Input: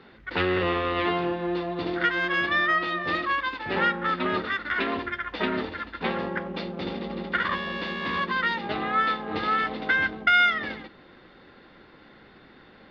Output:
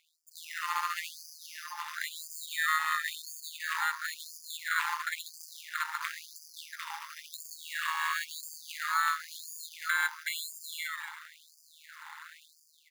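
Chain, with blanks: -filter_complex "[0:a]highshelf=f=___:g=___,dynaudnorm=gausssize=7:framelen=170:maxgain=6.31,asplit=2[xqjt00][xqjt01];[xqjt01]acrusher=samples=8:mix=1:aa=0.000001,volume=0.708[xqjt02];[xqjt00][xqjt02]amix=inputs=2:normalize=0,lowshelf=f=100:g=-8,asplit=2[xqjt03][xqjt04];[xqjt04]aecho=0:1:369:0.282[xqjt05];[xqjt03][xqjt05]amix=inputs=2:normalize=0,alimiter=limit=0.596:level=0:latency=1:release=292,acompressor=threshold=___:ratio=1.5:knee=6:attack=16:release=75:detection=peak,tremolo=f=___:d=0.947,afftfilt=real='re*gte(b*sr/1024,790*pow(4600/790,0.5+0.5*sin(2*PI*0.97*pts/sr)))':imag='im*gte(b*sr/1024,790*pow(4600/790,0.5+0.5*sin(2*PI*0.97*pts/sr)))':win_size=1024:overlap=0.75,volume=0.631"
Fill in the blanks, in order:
2.7k, -11.5, 0.0398, 160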